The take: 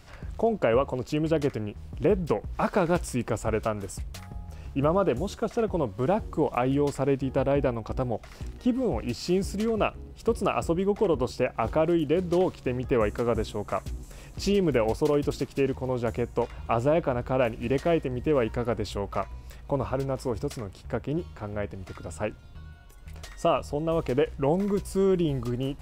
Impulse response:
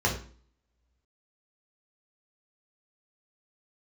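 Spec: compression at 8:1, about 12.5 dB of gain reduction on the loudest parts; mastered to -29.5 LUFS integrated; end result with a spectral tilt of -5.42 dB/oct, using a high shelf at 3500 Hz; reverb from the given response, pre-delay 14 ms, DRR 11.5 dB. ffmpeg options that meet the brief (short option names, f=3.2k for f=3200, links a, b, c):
-filter_complex "[0:a]highshelf=f=3.5k:g=8.5,acompressor=threshold=-32dB:ratio=8,asplit=2[a][b];[1:a]atrim=start_sample=2205,adelay=14[c];[b][c]afir=irnorm=-1:irlink=0,volume=-23.5dB[d];[a][d]amix=inputs=2:normalize=0,volume=6.5dB"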